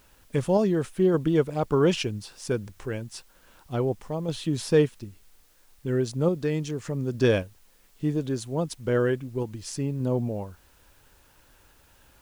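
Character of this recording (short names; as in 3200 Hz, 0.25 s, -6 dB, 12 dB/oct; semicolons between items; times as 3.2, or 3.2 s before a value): random-step tremolo; a quantiser's noise floor 10-bit, dither triangular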